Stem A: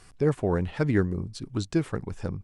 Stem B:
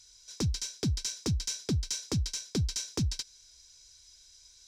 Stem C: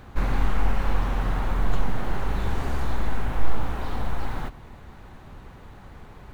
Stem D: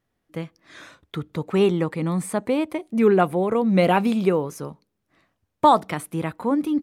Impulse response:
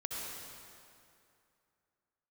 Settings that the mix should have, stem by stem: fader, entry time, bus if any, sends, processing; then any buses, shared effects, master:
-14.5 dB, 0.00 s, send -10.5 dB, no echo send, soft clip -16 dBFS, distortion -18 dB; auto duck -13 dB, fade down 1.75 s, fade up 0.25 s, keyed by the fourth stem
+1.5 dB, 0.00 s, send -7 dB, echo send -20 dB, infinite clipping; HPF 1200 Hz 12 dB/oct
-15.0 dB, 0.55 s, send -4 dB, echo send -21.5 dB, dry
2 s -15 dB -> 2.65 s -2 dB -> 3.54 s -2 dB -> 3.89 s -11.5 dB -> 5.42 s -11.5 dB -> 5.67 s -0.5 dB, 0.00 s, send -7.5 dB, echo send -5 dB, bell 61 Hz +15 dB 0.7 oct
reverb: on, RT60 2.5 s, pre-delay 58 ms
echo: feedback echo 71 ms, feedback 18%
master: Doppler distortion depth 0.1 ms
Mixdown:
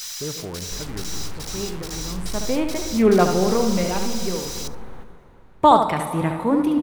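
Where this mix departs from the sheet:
stem A -14.5 dB -> -6.0 dB; stem B: send off

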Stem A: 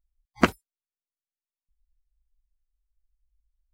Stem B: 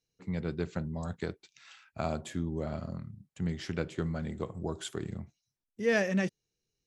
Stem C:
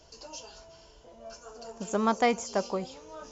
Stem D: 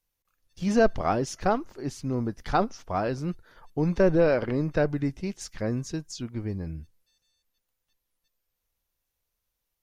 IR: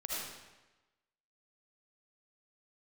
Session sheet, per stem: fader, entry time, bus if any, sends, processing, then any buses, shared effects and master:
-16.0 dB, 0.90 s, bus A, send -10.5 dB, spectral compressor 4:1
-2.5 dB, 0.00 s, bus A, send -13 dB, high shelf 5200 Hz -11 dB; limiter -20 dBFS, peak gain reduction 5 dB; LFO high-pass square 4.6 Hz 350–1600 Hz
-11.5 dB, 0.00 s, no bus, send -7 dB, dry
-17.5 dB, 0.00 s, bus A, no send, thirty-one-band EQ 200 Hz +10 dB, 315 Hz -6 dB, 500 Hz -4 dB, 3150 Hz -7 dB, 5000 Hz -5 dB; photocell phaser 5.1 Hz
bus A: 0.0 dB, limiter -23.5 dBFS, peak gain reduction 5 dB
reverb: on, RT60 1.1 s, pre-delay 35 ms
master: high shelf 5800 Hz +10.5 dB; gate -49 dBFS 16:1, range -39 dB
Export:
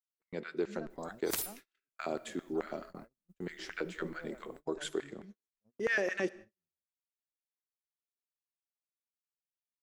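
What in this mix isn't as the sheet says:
stem C: muted; stem D -17.5 dB -> -26.5 dB; reverb return -8.0 dB

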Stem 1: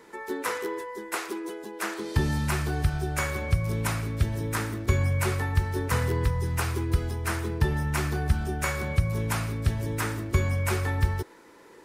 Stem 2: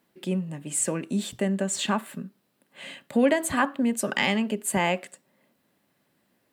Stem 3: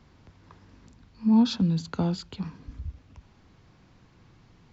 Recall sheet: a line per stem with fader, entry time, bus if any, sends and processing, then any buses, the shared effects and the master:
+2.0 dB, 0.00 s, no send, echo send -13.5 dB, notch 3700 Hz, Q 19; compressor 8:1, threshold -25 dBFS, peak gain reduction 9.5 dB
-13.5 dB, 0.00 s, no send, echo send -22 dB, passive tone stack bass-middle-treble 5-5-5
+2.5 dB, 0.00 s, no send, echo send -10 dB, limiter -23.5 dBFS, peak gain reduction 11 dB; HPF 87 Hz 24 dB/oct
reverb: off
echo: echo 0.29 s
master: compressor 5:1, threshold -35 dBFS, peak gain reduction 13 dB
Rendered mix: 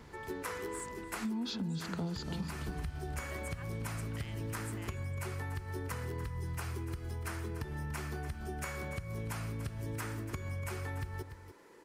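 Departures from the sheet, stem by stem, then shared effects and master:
stem 1 +2.0 dB -> -7.0 dB; stem 3: missing HPF 87 Hz 24 dB/oct

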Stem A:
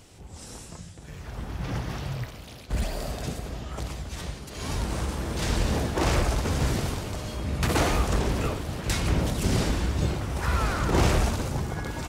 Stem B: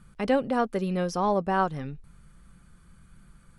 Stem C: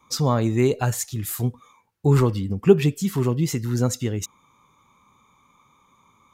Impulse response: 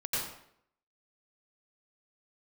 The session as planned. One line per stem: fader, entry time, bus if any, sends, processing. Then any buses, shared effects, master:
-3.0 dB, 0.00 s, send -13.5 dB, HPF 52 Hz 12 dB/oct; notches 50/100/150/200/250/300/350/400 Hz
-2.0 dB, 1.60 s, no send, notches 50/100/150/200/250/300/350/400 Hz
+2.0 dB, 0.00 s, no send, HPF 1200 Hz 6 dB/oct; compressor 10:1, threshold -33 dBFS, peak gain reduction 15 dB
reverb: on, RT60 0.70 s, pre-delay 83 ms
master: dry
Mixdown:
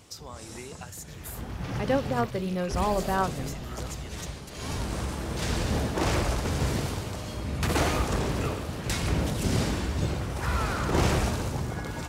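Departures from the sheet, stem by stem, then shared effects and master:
stem A: missing notches 50/100/150/200/250/300/350/400 Hz; stem C +2.0 dB -> -6.0 dB

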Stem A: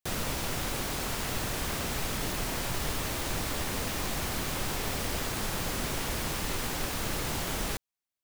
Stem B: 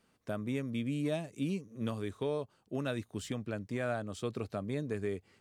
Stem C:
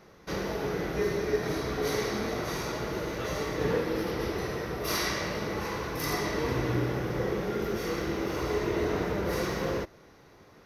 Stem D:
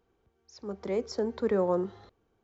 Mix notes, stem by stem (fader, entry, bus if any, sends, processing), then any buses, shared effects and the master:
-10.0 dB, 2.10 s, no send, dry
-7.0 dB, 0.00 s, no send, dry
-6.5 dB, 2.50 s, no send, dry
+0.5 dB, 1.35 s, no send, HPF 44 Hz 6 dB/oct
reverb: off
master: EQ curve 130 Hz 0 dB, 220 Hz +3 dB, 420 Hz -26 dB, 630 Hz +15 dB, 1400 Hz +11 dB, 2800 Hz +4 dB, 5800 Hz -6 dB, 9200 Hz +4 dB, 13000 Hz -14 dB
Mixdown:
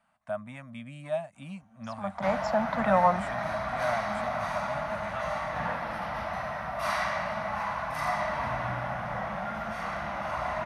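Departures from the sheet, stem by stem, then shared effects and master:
stem A: muted; stem C: entry 2.50 s -> 1.95 s

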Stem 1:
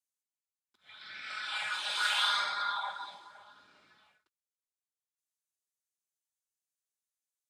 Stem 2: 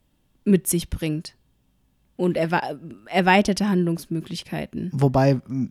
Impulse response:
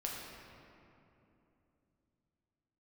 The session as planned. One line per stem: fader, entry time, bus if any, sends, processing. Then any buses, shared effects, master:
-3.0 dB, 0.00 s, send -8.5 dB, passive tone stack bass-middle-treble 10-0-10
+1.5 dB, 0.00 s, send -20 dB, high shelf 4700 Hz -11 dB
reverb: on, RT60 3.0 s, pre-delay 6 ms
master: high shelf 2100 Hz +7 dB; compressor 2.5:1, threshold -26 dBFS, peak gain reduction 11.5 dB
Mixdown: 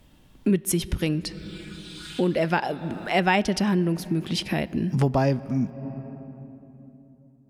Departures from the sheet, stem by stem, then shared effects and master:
stem 1 -3.0 dB -> -13.5 dB; stem 2 +1.5 dB -> +10.0 dB

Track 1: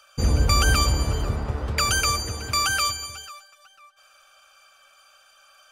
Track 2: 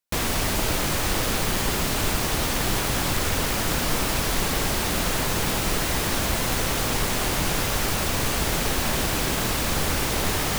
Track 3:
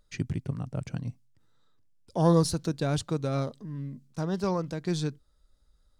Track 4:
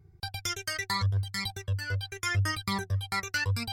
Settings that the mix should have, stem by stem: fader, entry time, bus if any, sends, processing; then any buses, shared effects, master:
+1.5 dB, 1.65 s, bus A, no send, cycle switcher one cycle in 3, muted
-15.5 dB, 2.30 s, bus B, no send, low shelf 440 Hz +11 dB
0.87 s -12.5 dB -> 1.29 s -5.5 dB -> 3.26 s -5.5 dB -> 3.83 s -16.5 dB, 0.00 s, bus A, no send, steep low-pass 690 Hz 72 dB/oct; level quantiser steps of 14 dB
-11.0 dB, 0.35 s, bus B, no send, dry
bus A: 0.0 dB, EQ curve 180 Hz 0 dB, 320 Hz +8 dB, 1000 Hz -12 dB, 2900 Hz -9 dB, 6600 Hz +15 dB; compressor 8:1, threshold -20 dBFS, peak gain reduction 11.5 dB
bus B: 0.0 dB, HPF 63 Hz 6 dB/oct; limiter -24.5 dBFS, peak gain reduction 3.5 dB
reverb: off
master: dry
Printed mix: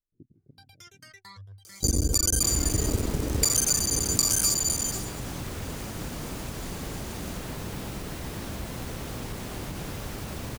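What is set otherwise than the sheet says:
stem 3 -12.5 dB -> -22.0 dB; stem 4 -11.0 dB -> -17.5 dB

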